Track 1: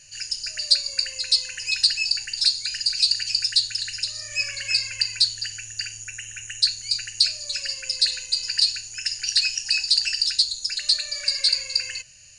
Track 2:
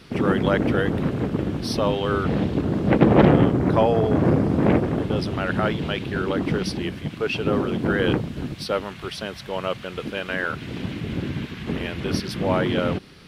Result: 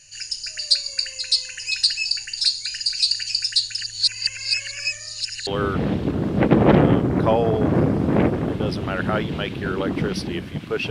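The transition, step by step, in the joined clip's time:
track 1
3.81–5.47 reverse
5.47 switch to track 2 from 1.97 s

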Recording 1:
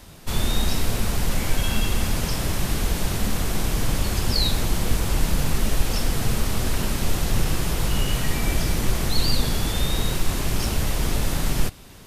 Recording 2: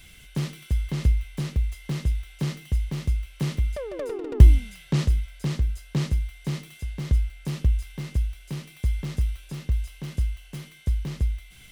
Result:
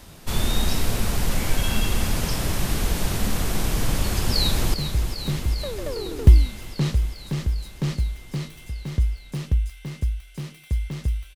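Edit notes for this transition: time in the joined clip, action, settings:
recording 1
3.98–4.74 echo throw 0.4 s, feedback 80%, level -9.5 dB
4.74 switch to recording 2 from 2.87 s

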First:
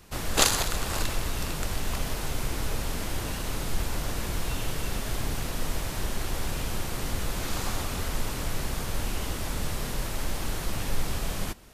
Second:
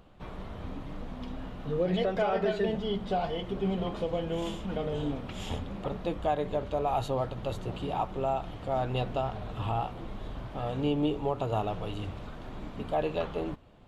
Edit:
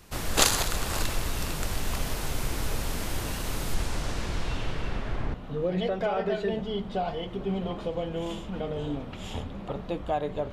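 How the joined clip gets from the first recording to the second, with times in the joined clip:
first
3.74–5.34 LPF 11000 Hz -> 1700 Hz
5.34 switch to second from 1.5 s

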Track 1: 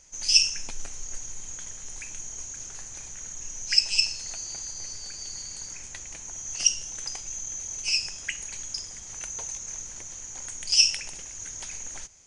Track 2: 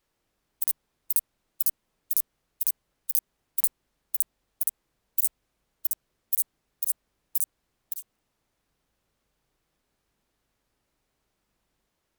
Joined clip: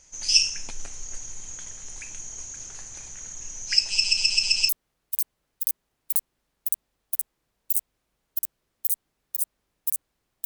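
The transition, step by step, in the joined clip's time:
track 1
3.91 stutter in place 0.13 s, 6 plays
4.69 switch to track 2 from 2.17 s

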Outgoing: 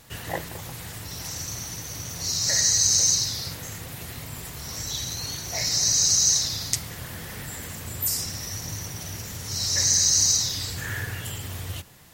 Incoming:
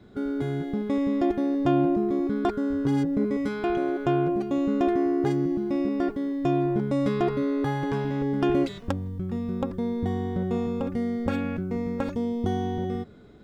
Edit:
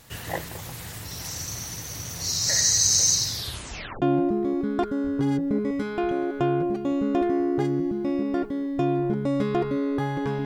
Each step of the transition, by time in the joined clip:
outgoing
3.36 tape stop 0.66 s
4.02 switch to incoming from 1.68 s

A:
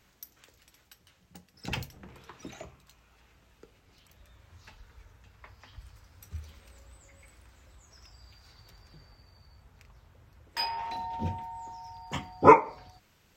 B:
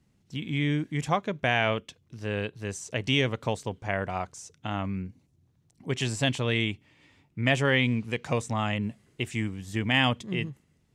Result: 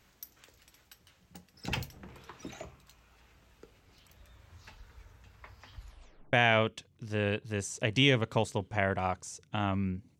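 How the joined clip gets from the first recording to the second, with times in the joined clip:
A
5.76 tape stop 0.57 s
6.33 switch to B from 1.44 s

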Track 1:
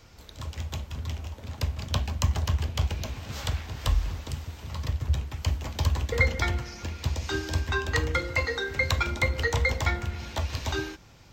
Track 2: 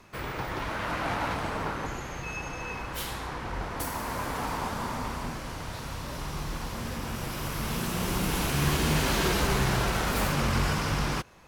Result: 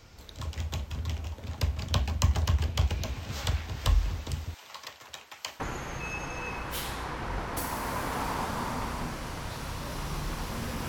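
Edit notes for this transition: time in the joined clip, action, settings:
track 1
4.54–5.6 HPF 740 Hz 12 dB/oct
5.6 switch to track 2 from 1.83 s

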